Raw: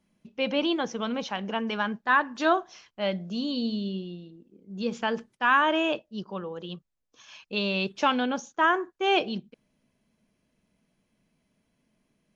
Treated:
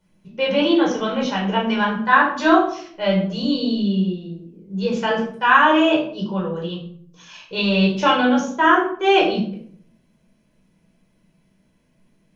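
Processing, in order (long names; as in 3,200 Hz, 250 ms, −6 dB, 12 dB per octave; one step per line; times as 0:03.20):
rectangular room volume 730 cubic metres, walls furnished, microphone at 4.8 metres
level +1.5 dB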